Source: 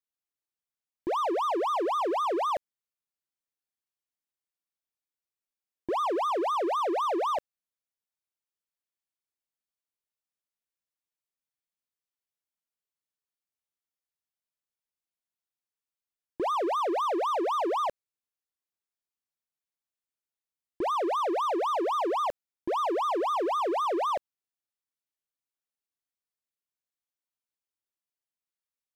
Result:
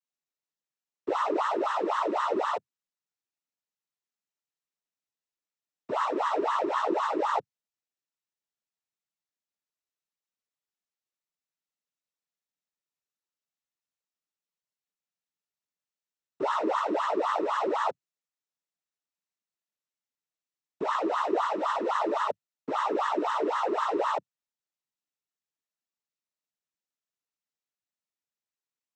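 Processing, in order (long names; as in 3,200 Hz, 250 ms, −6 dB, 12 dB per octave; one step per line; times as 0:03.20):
cochlear-implant simulation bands 12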